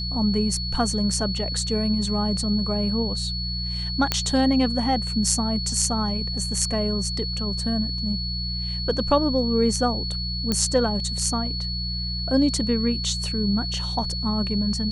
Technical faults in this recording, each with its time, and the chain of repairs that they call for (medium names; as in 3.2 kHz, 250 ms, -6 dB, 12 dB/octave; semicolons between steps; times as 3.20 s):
hum 60 Hz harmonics 3 -30 dBFS
whine 4.4 kHz -29 dBFS
4.12 s: pop -5 dBFS
10.52 s: pop -9 dBFS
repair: de-click; de-hum 60 Hz, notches 3; band-stop 4.4 kHz, Q 30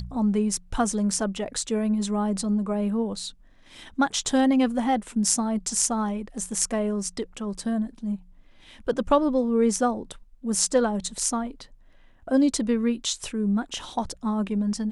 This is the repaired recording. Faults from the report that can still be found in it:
nothing left